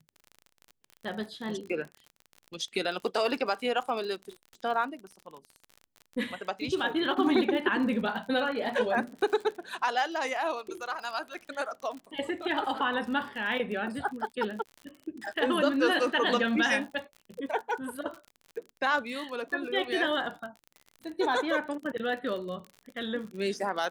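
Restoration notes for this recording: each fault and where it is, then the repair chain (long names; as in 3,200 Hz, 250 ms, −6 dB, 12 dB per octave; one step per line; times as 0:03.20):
surface crackle 45 per second −37 dBFS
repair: click removal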